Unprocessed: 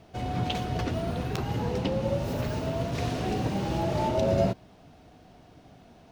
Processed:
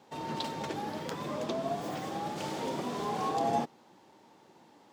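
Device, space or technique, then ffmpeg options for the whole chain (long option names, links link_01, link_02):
nightcore: -af "asetrate=54684,aresample=44100,highpass=240,volume=-4dB"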